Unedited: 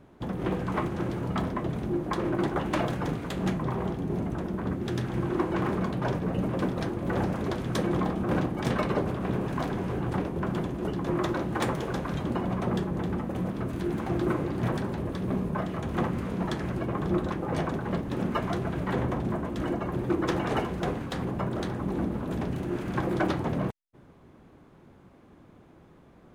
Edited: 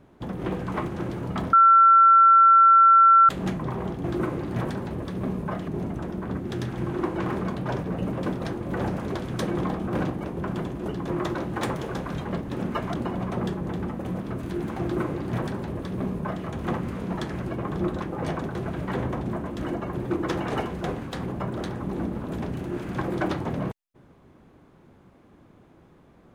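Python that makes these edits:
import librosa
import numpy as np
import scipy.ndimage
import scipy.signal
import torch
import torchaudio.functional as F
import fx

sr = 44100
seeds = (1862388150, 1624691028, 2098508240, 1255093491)

y = fx.edit(x, sr, fx.bleep(start_s=1.53, length_s=1.76, hz=1350.0, db=-11.0),
    fx.cut(start_s=8.6, length_s=1.63),
    fx.duplicate(start_s=14.11, length_s=1.64, to_s=4.04),
    fx.move(start_s=17.85, length_s=0.69, to_s=12.24), tone=tone)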